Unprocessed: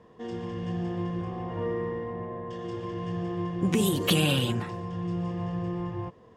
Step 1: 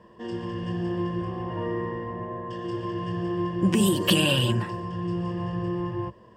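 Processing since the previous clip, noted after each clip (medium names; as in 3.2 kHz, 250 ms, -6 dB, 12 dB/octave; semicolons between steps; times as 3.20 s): rippled EQ curve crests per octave 1.3, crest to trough 9 dB; trim +1.5 dB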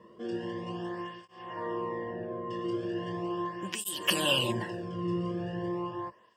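cancelling through-zero flanger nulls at 0.39 Hz, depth 1.3 ms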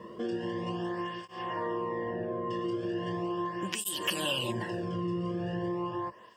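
compression 3:1, threshold -42 dBFS, peak gain reduction 15.5 dB; trim +9 dB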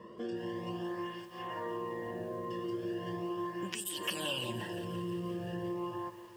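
bit-crushed delay 174 ms, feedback 80%, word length 8-bit, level -14.5 dB; trim -5 dB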